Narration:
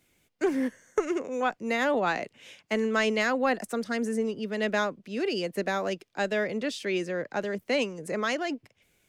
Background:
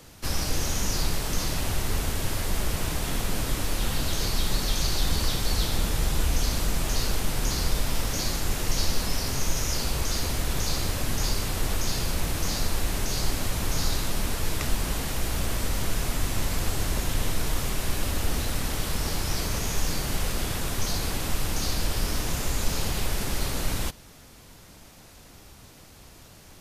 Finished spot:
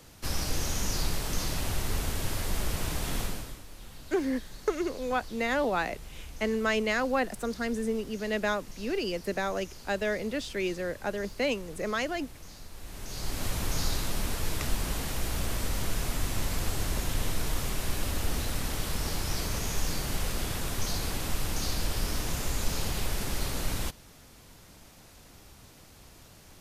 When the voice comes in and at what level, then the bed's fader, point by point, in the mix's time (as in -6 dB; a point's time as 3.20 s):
3.70 s, -2.0 dB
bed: 3.23 s -3.5 dB
3.64 s -20 dB
12.70 s -20 dB
13.46 s -3.5 dB